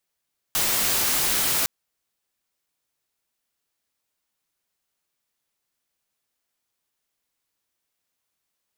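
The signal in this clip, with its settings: noise white, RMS -22.5 dBFS 1.11 s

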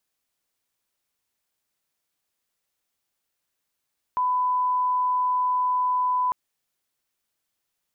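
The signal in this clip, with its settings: line-up tone -20 dBFS 2.15 s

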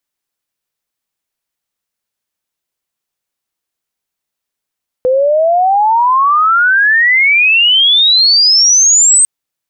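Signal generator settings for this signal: sweep logarithmic 500 Hz -> 8.4 kHz -7.5 dBFS -> -4.5 dBFS 4.20 s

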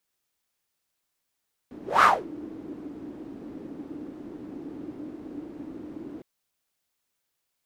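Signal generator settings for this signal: whoosh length 4.51 s, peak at 0.32 s, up 0.20 s, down 0.25 s, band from 300 Hz, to 1.3 kHz, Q 6.4, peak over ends 24 dB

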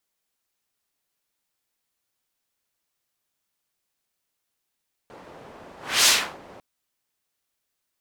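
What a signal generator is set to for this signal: whoosh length 1.50 s, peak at 0.96 s, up 0.30 s, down 0.35 s, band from 570 Hz, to 5.1 kHz, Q 0.85, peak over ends 29.5 dB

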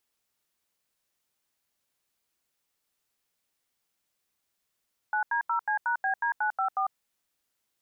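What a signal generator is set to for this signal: DTMF "9D0C#BD954", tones 99 ms, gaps 83 ms, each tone -27 dBFS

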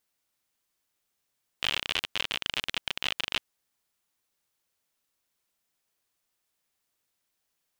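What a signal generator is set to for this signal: random clicks 55 per s -12 dBFS 1.80 s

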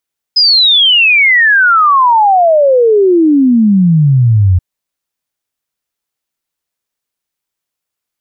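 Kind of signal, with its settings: log sweep 5.1 kHz -> 87 Hz 4.23 s -4.5 dBFS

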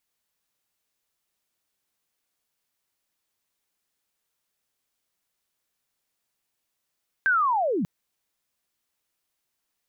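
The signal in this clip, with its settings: sweep linear 1.6 kHz -> 150 Hz -17.5 dBFS -> -23 dBFS 0.59 s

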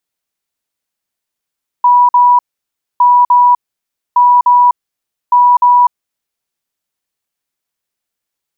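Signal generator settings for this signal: beep pattern sine 978 Hz, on 0.25 s, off 0.05 s, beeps 2, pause 0.61 s, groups 4, -4 dBFS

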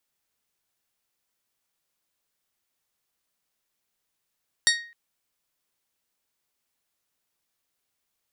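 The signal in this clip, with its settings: glass hit bell, length 0.26 s, lowest mode 1.87 kHz, modes 6, decay 0.47 s, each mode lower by 0.5 dB, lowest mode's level -18.5 dB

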